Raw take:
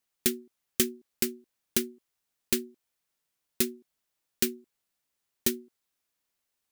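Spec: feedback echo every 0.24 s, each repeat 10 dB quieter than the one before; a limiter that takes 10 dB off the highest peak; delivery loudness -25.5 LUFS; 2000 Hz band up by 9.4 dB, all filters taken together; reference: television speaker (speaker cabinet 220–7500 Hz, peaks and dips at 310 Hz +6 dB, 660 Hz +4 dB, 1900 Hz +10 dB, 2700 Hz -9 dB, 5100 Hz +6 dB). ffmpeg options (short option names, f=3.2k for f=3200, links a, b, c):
-af "equalizer=f=2k:t=o:g=6,alimiter=limit=-17.5dB:level=0:latency=1,highpass=f=220:w=0.5412,highpass=f=220:w=1.3066,equalizer=f=310:t=q:w=4:g=6,equalizer=f=660:t=q:w=4:g=4,equalizer=f=1.9k:t=q:w=4:g=10,equalizer=f=2.7k:t=q:w=4:g=-9,equalizer=f=5.1k:t=q:w=4:g=6,lowpass=f=7.5k:w=0.5412,lowpass=f=7.5k:w=1.3066,aecho=1:1:240|480|720|960:0.316|0.101|0.0324|0.0104,volume=12.5dB"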